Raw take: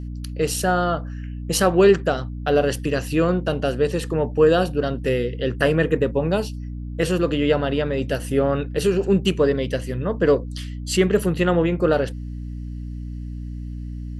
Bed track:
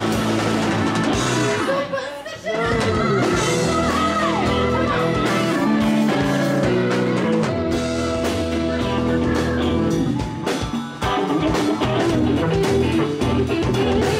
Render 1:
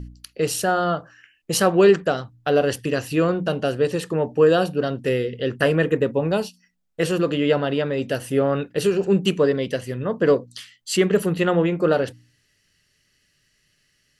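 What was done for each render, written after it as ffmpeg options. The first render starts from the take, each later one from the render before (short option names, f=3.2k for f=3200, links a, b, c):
-af "bandreject=f=60:t=h:w=4,bandreject=f=120:t=h:w=4,bandreject=f=180:t=h:w=4,bandreject=f=240:t=h:w=4,bandreject=f=300:t=h:w=4"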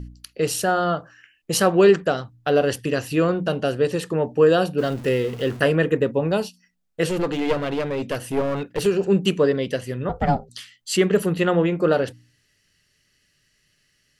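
-filter_complex "[0:a]asettb=1/sr,asplit=3[a][b][c];[a]atrim=end=4.784[d];[b]atrim=start=4.78:end=5.6,asetpts=PTS-STARTPTS,afade=t=in:d=0.004:c=qsin,afade=t=out:st=0.816:d=0.004:c=qsin,aeval=exprs='val(0)+0.5*0.0188*sgn(val(0))':c=same[e];[c]atrim=start=5.596[f];[d][e]acrossfade=d=0.004:c1=hsin:c2=qsin[g];[g][f]acrossfade=d=0.004:c1=qsin:c2=hsin,asettb=1/sr,asplit=3[h][i][j];[h]atrim=end=7.094[k];[i]atrim=start=7.09:end=8.86,asetpts=PTS-STARTPTS,afade=t=in:d=0.004:c=qsin,afade=t=out:st=1.766:d=0.004:c=qsin,aeval=exprs='clip(val(0),-1,0.0668)':c=same[l];[j]atrim=start=8.856[m];[k][l]acrossfade=d=0.004:c1=hsin:c2=qsin[n];[n][m]acrossfade=d=0.004:c1=qsin:c2=hsin,asettb=1/sr,asplit=3[o][p][q];[o]atrim=end=10.094[r];[p]atrim=start=10.09:end=10.49,asetpts=PTS-STARTPTS,afade=t=in:d=0.004:c=qsin,afade=t=out:st=0.396:d=0.004:c=qsin,aeval=exprs='val(0)*sin(2*PI*280*n/s)':c=same[s];[q]atrim=start=10.486[t];[r][s]acrossfade=d=0.004:c1=hsin:c2=qsin[u];[u][t]acrossfade=d=0.004:c1=qsin:c2=hsin"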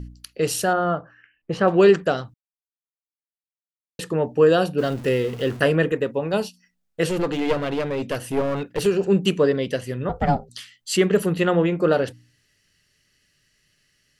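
-filter_complex "[0:a]asettb=1/sr,asplit=3[a][b][c];[a]atrim=end=0.734[d];[b]atrim=start=0.73:end=1.68,asetpts=PTS-STARTPTS,afade=t=in:d=0.004:c=qsin,afade=t=out:st=0.946:d=0.004:c=qsin,lowpass=1.9k[e];[c]atrim=start=1.676[f];[d][e]acrossfade=d=0.004:c1=hsin:c2=qsin[g];[g][f]acrossfade=d=0.004:c1=qsin:c2=hsin,asettb=1/sr,asplit=3[h][i][j];[h]atrim=end=5.924[k];[i]atrim=start=5.92:end=6.34,asetpts=PTS-STARTPTS,afade=t=in:d=0.004:c=qsin,afade=t=out:st=0.416:d=0.004:c=qsin,lowshelf=f=360:g=-7[l];[j]atrim=start=6.336[m];[k][l]acrossfade=d=0.004:c1=hsin:c2=qsin[n];[n][m]acrossfade=d=0.004:c1=qsin:c2=hsin,asplit=3[o][p][q];[o]atrim=end=2.34,asetpts=PTS-STARTPTS,afade=t=out:st=2.336:d=0.004:c=hsin[r];[p]atrim=start=2.34:end=3.99,asetpts=PTS-STARTPTS,volume=0[s];[q]atrim=start=3.99,asetpts=PTS-STARTPTS,afade=t=in:d=0.004:c=hsin[t];[r][s][t]concat=n=3:v=0:a=1"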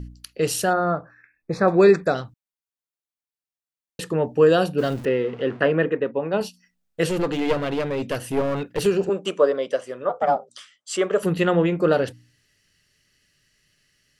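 -filter_complex "[0:a]asplit=3[a][b][c];[a]afade=t=out:st=0.69:d=0.02[d];[b]asuperstop=centerf=3000:order=20:qfactor=3.8,afade=t=in:st=0.69:d=0.02,afade=t=out:st=2.14:d=0.02[e];[c]afade=t=in:st=2.14:d=0.02[f];[d][e][f]amix=inputs=3:normalize=0,asettb=1/sr,asplit=3[g][h][i];[g]atrim=end=5.054[j];[h]atrim=start=5.05:end=6.41,asetpts=PTS-STARTPTS,afade=t=in:d=0.004:c=qsin,afade=t=out:st=1.356:d=0.004:c=qsin,highpass=180,lowpass=2.4k[k];[i]atrim=start=6.406[l];[j][k]acrossfade=d=0.004:c1=hsin:c2=qsin[m];[m][l]acrossfade=d=0.004:c1=qsin:c2=hsin,asettb=1/sr,asplit=3[n][o][p];[n]atrim=end=9.094[q];[o]atrim=start=9.09:end=11.23,asetpts=PTS-STARTPTS,afade=t=in:d=0.004:c=qsin,afade=t=out:st=2.136:d=0.004:c=qsin,highpass=440,equalizer=f=590:t=q:w=4:g=8,equalizer=f=1.2k:t=q:w=4:g=7,equalizer=f=1.9k:t=q:w=4:g=-6,equalizer=f=2.7k:t=q:w=4:g=-6,equalizer=f=4.3k:t=q:w=4:g=-10,equalizer=f=6.5k:t=q:w=4:g=-3,lowpass=f=8.5k:w=0.5412,lowpass=f=8.5k:w=1.3066[r];[p]atrim=start=11.226[s];[q][r]acrossfade=d=0.004:c1=hsin:c2=qsin[t];[t][s]acrossfade=d=0.004:c1=qsin:c2=hsin"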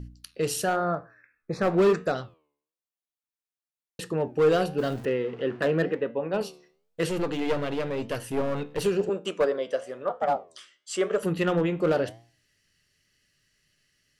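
-af "asoftclip=type=hard:threshold=-12.5dB,flanger=delay=8.6:depth=5.2:regen=86:speed=0.98:shape=sinusoidal"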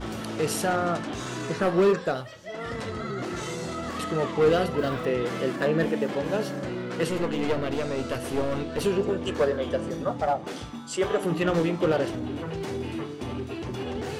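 -filter_complex "[1:a]volume=-14dB[a];[0:a][a]amix=inputs=2:normalize=0"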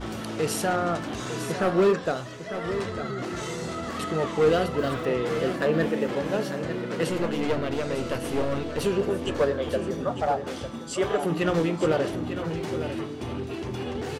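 -af "aecho=1:1:901:0.316"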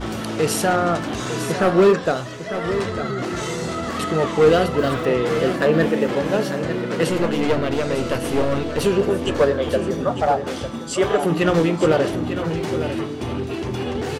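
-af "volume=6.5dB"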